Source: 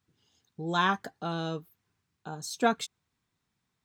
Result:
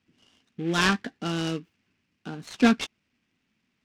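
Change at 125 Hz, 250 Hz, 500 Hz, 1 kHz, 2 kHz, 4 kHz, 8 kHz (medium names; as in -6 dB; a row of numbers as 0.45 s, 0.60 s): +5.0 dB, +9.5 dB, +1.5 dB, -2.0 dB, +5.5 dB, +6.0 dB, +3.5 dB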